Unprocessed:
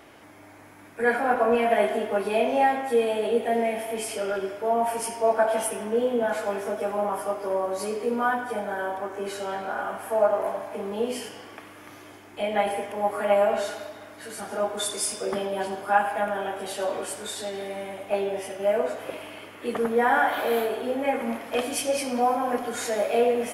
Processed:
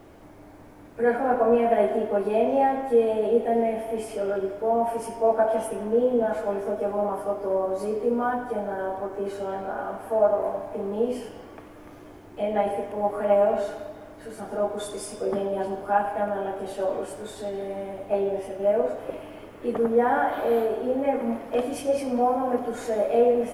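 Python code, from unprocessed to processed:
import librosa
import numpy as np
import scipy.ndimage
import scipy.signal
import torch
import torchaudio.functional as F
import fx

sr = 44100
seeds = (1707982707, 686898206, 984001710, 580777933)

y = fx.dmg_noise_colour(x, sr, seeds[0], colour='pink', level_db=-54.0)
y = fx.curve_eq(y, sr, hz=(520.0, 2000.0, 4100.0), db=(0, -11, -13))
y = F.gain(torch.from_numpy(y), 2.5).numpy()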